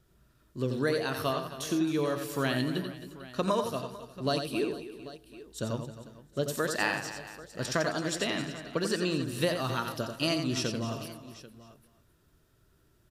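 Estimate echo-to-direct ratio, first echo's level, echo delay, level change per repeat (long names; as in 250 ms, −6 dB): −5.0 dB, −6.5 dB, 88 ms, repeats not evenly spaced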